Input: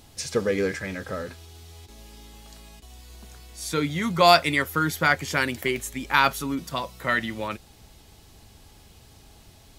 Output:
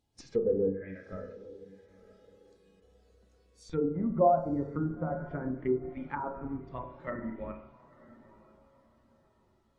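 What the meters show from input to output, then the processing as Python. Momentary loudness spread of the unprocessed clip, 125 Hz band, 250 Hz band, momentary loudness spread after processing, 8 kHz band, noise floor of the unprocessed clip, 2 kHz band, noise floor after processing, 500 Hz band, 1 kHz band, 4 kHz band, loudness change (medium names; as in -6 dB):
15 LU, -6.0 dB, -4.0 dB, 17 LU, under -25 dB, -53 dBFS, -24.5 dB, -68 dBFS, -4.0 dB, -10.5 dB, under -30 dB, -8.5 dB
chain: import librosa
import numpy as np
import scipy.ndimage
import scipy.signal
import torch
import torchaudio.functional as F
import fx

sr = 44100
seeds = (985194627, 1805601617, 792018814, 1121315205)

p1 = fx.schmitt(x, sr, flips_db=-22.5)
p2 = x + (p1 * 10.0 ** (-3.5 / 20.0))
p3 = fx.env_lowpass_down(p2, sr, base_hz=890.0, full_db=-19.0)
p4 = fx.rev_spring(p3, sr, rt60_s=1.0, pass_ms=(31, 42), chirp_ms=55, drr_db=3.0)
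p5 = fx.env_lowpass_down(p4, sr, base_hz=1100.0, full_db=-19.0)
p6 = fx.low_shelf(p5, sr, hz=120.0, db=-6.0)
p7 = p6 + fx.echo_diffused(p6, sr, ms=955, feedback_pct=45, wet_db=-13.0, dry=0)
p8 = fx.dynamic_eq(p7, sr, hz=980.0, q=1.3, threshold_db=-40.0, ratio=4.0, max_db=-3)
p9 = fx.spectral_expand(p8, sr, expansion=1.5)
y = p9 * 10.0 ** (-4.5 / 20.0)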